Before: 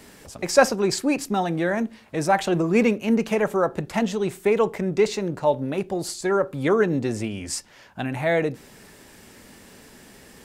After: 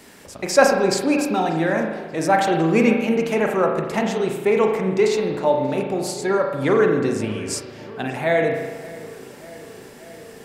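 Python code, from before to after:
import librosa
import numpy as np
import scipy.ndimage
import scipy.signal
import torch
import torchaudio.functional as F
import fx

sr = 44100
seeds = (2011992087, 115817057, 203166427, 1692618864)

p1 = fx.low_shelf(x, sr, hz=120.0, db=-8.0)
p2 = p1 + fx.echo_filtered(p1, sr, ms=585, feedback_pct=74, hz=2900.0, wet_db=-18.5, dry=0)
p3 = fx.rev_spring(p2, sr, rt60_s=1.2, pass_ms=(37,), chirp_ms=20, drr_db=2.5)
y = F.gain(torch.from_numpy(p3), 1.5).numpy()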